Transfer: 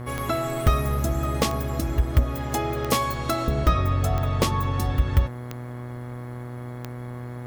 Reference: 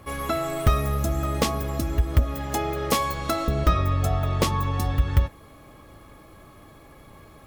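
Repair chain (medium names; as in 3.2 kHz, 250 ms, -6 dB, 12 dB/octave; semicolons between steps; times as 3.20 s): de-click; de-hum 122.4 Hz, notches 18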